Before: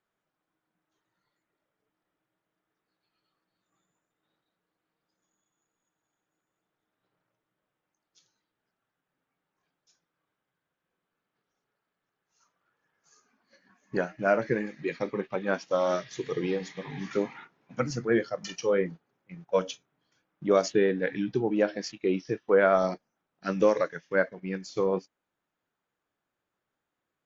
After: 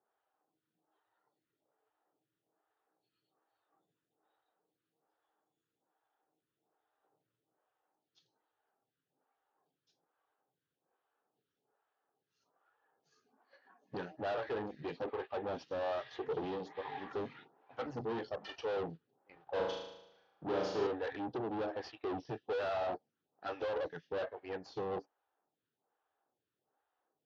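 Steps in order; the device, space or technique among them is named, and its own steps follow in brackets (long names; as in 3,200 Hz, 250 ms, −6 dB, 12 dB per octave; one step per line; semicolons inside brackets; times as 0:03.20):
vibe pedal into a guitar amplifier (phaser with staggered stages 1.2 Hz; tube saturation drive 39 dB, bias 0.55; loudspeaker in its box 80–4,100 Hz, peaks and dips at 190 Hz −8 dB, 440 Hz +5 dB, 790 Hz +10 dB, 2,200 Hz −8 dB)
0:19.43–0:20.87: flutter between parallel walls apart 6.4 metres, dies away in 0.88 s
level +2 dB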